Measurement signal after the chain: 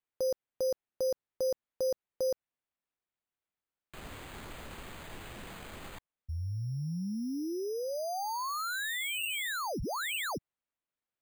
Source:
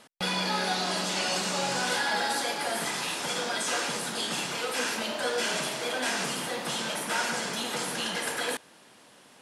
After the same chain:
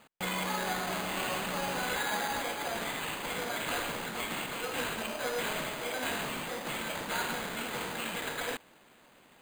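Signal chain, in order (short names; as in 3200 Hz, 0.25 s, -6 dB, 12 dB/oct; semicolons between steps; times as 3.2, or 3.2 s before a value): sample-and-hold 8×; gain -4.5 dB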